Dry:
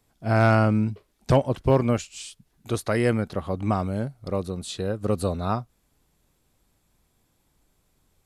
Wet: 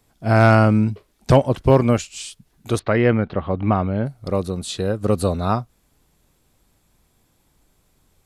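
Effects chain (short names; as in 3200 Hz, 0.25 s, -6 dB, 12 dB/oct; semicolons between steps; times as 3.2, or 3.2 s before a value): 2.79–4.06 LPF 3300 Hz 24 dB/oct; gain +5.5 dB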